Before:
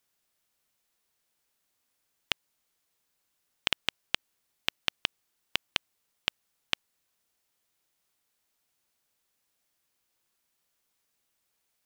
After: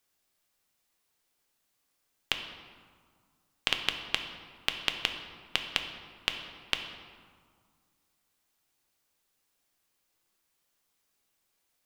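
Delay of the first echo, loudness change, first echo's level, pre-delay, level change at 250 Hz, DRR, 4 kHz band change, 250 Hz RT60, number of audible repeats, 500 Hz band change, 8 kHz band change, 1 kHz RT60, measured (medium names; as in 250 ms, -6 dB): no echo, +0.5 dB, no echo, 3 ms, +2.0 dB, 4.5 dB, +1.0 dB, 2.3 s, no echo, +1.5 dB, +0.5 dB, 2.0 s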